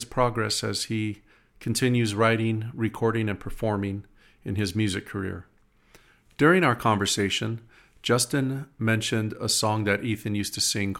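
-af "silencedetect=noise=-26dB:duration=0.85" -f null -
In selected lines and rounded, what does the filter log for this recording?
silence_start: 5.33
silence_end: 6.39 | silence_duration: 1.07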